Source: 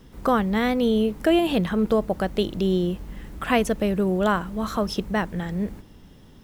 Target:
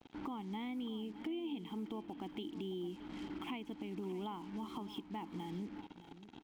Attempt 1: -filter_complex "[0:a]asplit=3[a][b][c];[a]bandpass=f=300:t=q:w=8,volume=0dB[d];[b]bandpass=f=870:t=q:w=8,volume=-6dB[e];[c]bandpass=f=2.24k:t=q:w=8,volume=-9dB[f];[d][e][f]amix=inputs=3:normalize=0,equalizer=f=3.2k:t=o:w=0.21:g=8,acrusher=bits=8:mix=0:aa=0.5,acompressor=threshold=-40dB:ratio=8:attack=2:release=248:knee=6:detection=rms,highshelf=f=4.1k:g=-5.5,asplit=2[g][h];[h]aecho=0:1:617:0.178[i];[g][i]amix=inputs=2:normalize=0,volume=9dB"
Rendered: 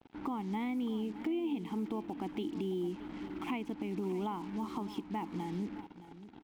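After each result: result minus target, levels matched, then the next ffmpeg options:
4000 Hz band -7.0 dB; compressor: peak gain reduction -6 dB
-filter_complex "[0:a]asplit=3[a][b][c];[a]bandpass=f=300:t=q:w=8,volume=0dB[d];[b]bandpass=f=870:t=q:w=8,volume=-6dB[e];[c]bandpass=f=2.24k:t=q:w=8,volume=-9dB[f];[d][e][f]amix=inputs=3:normalize=0,equalizer=f=3.2k:t=o:w=0.21:g=18.5,acrusher=bits=8:mix=0:aa=0.5,acompressor=threshold=-40dB:ratio=8:attack=2:release=248:knee=6:detection=rms,highshelf=f=4.1k:g=-5.5,asplit=2[g][h];[h]aecho=0:1:617:0.178[i];[g][i]amix=inputs=2:normalize=0,volume=9dB"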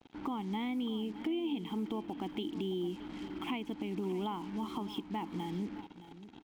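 compressor: peak gain reduction -6 dB
-filter_complex "[0:a]asplit=3[a][b][c];[a]bandpass=f=300:t=q:w=8,volume=0dB[d];[b]bandpass=f=870:t=q:w=8,volume=-6dB[e];[c]bandpass=f=2.24k:t=q:w=8,volume=-9dB[f];[d][e][f]amix=inputs=3:normalize=0,equalizer=f=3.2k:t=o:w=0.21:g=18.5,acrusher=bits=8:mix=0:aa=0.5,acompressor=threshold=-47dB:ratio=8:attack=2:release=248:knee=6:detection=rms,highshelf=f=4.1k:g=-5.5,asplit=2[g][h];[h]aecho=0:1:617:0.178[i];[g][i]amix=inputs=2:normalize=0,volume=9dB"

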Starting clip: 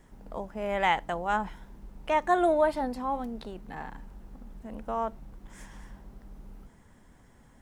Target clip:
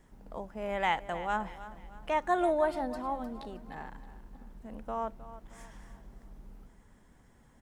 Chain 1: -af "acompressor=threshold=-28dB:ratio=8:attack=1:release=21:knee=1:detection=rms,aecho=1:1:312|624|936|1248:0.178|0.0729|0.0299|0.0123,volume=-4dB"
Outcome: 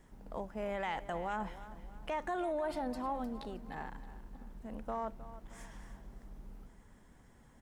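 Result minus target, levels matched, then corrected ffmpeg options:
compressor: peak gain reduction +11 dB
-af "aecho=1:1:312|624|936|1248:0.178|0.0729|0.0299|0.0123,volume=-4dB"

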